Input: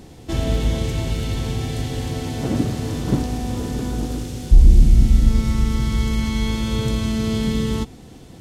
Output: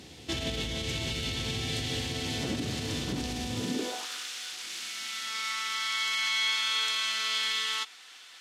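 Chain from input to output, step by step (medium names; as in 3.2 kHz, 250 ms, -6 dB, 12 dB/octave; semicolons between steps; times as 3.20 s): high-pass sweep 64 Hz -> 1.3 kHz, 3.49–4.07 s; peak limiter -15 dBFS, peak gain reduction 9.5 dB; frequency weighting D; trim -6.5 dB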